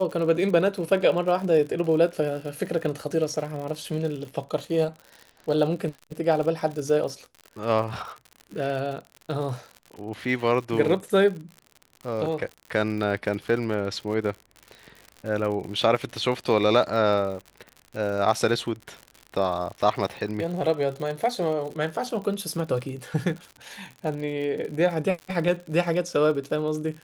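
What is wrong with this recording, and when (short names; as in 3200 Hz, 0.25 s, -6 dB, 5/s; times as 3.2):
crackle 79/s -33 dBFS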